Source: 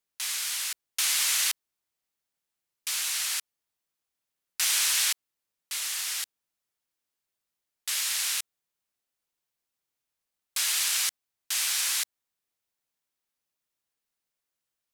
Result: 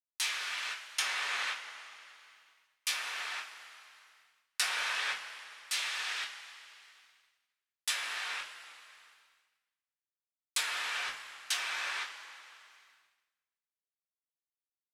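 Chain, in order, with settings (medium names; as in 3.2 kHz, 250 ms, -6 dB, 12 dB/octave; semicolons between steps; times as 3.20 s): low-pass that closes with the level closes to 1.6 kHz, closed at -26.5 dBFS; two-slope reverb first 0.24 s, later 2.9 s, from -18 dB, DRR -3 dB; expander -60 dBFS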